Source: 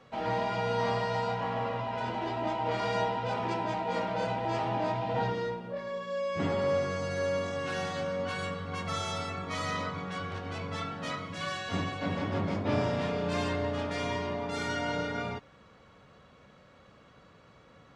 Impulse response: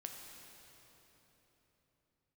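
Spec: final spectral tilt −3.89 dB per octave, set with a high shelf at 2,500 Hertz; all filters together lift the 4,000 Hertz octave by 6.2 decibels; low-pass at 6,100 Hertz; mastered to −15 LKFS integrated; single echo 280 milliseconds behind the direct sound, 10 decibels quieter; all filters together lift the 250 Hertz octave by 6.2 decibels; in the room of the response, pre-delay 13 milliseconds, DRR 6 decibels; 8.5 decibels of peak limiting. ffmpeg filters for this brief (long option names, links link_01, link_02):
-filter_complex "[0:a]lowpass=6100,equalizer=frequency=250:width_type=o:gain=8,highshelf=frequency=2500:gain=6.5,equalizer=frequency=4000:width_type=o:gain=3,alimiter=limit=-20.5dB:level=0:latency=1,aecho=1:1:280:0.316,asplit=2[link_01][link_02];[1:a]atrim=start_sample=2205,adelay=13[link_03];[link_02][link_03]afir=irnorm=-1:irlink=0,volume=-3dB[link_04];[link_01][link_04]amix=inputs=2:normalize=0,volume=14dB"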